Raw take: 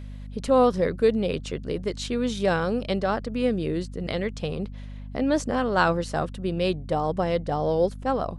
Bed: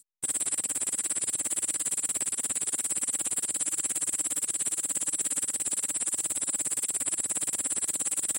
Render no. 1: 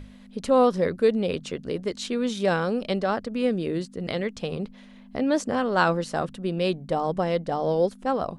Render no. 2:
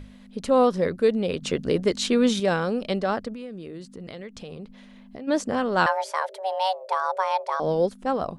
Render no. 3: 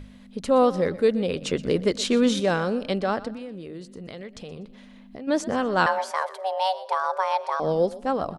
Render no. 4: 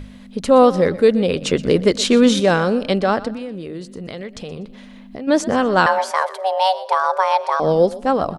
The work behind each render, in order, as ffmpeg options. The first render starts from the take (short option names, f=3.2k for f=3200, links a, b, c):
-af "bandreject=f=50:t=h:w=6,bandreject=f=100:t=h:w=6,bandreject=f=150:t=h:w=6"
-filter_complex "[0:a]asettb=1/sr,asplit=3[a][b][c];[a]atrim=end=1.424[d];[b]atrim=start=1.42:end=2.4,asetpts=PTS-STARTPTS,afade=t=in:d=0.004:c=qsin,afade=t=out:st=0.976:d=0.004:c=qsin,acontrast=64[e];[c]atrim=start=2.396[f];[d][e]acrossfade=d=0.004:c1=hsin:c2=qsin[g];[g][f]acrossfade=d=0.004:c1=qsin:c2=hsin,asplit=3[h][i][j];[h]afade=t=out:st=3.33:d=0.02[k];[i]acompressor=threshold=-36dB:ratio=4:attack=3.2:release=140:knee=1:detection=peak,afade=t=in:st=3.33:d=0.02,afade=t=out:st=5.27:d=0.02[l];[j]afade=t=in:st=5.27:d=0.02[m];[k][l][m]amix=inputs=3:normalize=0,asettb=1/sr,asplit=3[n][o][p];[n]atrim=end=5.864[q];[o]atrim=start=5.86:end=7.6,asetpts=PTS-STARTPTS,afade=t=in:d=0.004:c=qsin,afade=t=out:st=1.736:d=0.004:c=qsin,afreqshift=380[r];[p]atrim=start=7.596[s];[q][r]acrossfade=d=0.004:c1=hsin:c2=qsin[t];[t][s]acrossfade=d=0.004:c1=qsin:c2=hsin"
-filter_complex "[0:a]asplit=4[a][b][c][d];[b]adelay=122,afreqshift=31,volume=-17.5dB[e];[c]adelay=244,afreqshift=62,volume=-27.1dB[f];[d]adelay=366,afreqshift=93,volume=-36.8dB[g];[a][e][f][g]amix=inputs=4:normalize=0"
-af "volume=7.5dB,alimiter=limit=-3dB:level=0:latency=1"